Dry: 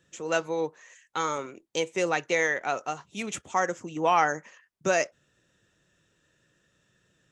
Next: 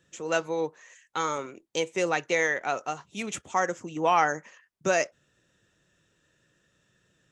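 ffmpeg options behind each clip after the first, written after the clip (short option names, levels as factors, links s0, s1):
-af anull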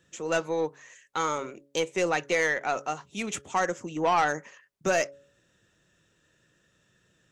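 -af "acontrast=84,bandreject=f=140.5:t=h:w=4,bandreject=f=281:t=h:w=4,bandreject=f=421.5:t=h:w=4,bandreject=f=562:t=h:w=4,aeval=exprs='(tanh(3.16*val(0)+0.15)-tanh(0.15))/3.16':c=same,volume=0.531"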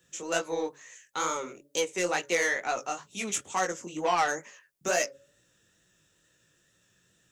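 -filter_complex "[0:a]acrossover=split=180|3300[s0][s1][s2];[s0]acompressor=threshold=0.002:ratio=6[s3];[s3][s1][s2]amix=inputs=3:normalize=0,flanger=delay=16:depth=6.9:speed=2.2,crystalizer=i=2:c=0"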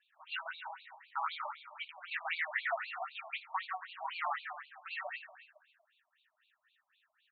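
-af "alimiter=limit=0.106:level=0:latency=1:release=97,aecho=1:1:138|276|414|552|690|828:0.631|0.29|0.134|0.0614|0.0283|0.013,afftfilt=real='re*between(b*sr/1024,820*pow(3300/820,0.5+0.5*sin(2*PI*3.9*pts/sr))/1.41,820*pow(3300/820,0.5+0.5*sin(2*PI*3.9*pts/sr))*1.41)':imag='im*between(b*sr/1024,820*pow(3300/820,0.5+0.5*sin(2*PI*3.9*pts/sr))/1.41,820*pow(3300/820,0.5+0.5*sin(2*PI*3.9*pts/sr))*1.41)':win_size=1024:overlap=0.75,volume=0.891"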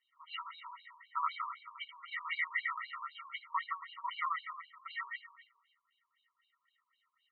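-af "highpass=620,lowpass=3200,afftfilt=real='re*eq(mod(floor(b*sr/1024/460),2),0)':imag='im*eq(mod(floor(b*sr/1024/460),2),0)':win_size=1024:overlap=0.75,volume=1.5"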